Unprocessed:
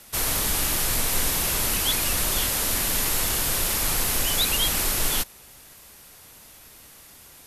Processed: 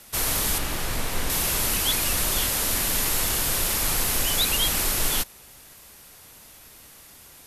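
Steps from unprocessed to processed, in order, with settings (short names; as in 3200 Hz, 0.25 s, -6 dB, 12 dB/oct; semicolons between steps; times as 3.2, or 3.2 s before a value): 0.58–1.3 high shelf 4300 Hz -10 dB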